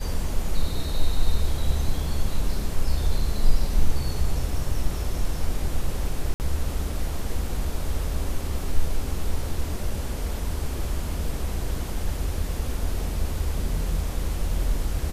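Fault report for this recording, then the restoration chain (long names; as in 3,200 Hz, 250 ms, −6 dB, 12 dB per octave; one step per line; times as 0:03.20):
0:06.34–0:06.40: drop-out 59 ms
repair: repair the gap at 0:06.34, 59 ms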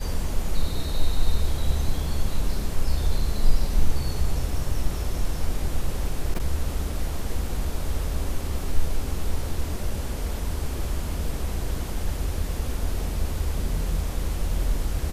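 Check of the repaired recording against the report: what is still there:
none of them is left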